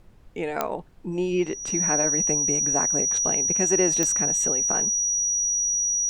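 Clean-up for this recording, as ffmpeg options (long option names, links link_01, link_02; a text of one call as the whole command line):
ffmpeg -i in.wav -af "adeclick=threshold=4,bandreject=frequency=5800:width=30,agate=range=-21dB:threshold=-30dB" out.wav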